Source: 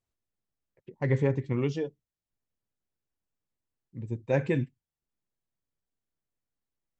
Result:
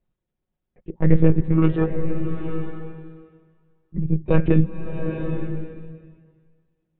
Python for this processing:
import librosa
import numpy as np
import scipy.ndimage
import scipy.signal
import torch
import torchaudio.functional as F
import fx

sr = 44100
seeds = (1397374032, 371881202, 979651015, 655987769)

y = fx.diode_clip(x, sr, knee_db=-24.0)
y = fx.peak_eq(y, sr, hz=1200.0, db=10.5, octaves=0.98, at=(1.58, 3.97))
y = fx.lpc_monotone(y, sr, seeds[0], pitch_hz=160.0, order=16)
y = fx.tilt_shelf(y, sr, db=6.0, hz=740.0)
y = y + 0.41 * np.pad(y, (int(5.5 * sr / 1000.0), 0))[:len(y)]
y = fx.rev_bloom(y, sr, seeds[1], attack_ms=890, drr_db=6.0)
y = y * librosa.db_to_amplitude(7.5)